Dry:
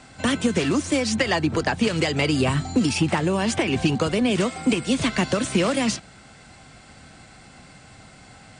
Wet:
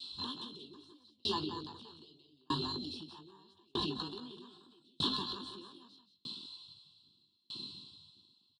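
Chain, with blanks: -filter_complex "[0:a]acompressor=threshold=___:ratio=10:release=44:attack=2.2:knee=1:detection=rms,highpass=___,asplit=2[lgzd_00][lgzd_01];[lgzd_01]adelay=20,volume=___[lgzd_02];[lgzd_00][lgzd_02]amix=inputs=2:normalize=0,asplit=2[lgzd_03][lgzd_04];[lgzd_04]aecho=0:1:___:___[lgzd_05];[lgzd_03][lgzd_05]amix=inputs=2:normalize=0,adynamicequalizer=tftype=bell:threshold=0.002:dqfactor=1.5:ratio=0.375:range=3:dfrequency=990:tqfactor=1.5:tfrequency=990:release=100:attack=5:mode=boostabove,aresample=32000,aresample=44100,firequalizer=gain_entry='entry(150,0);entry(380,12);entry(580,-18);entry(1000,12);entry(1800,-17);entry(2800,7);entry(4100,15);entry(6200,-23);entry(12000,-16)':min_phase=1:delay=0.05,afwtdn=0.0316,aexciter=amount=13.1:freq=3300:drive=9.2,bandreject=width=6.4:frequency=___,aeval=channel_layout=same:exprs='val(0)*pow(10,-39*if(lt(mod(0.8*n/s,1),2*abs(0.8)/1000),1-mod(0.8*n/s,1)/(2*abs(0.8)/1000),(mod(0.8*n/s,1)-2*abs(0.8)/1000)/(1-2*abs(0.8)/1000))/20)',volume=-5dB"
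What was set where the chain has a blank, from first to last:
-33dB, 41, -6.5dB, 178, 0.668, 4700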